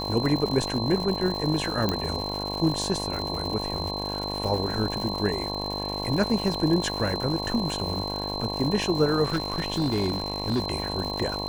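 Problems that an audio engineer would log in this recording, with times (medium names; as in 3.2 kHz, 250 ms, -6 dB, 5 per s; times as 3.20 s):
buzz 50 Hz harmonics 22 -33 dBFS
crackle 220 per s -31 dBFS
whine 4.1 kHz -32 dBFS
1.89 s: pop -11 dBFS
9.24–10.64 s: clipped -20.5 dBFS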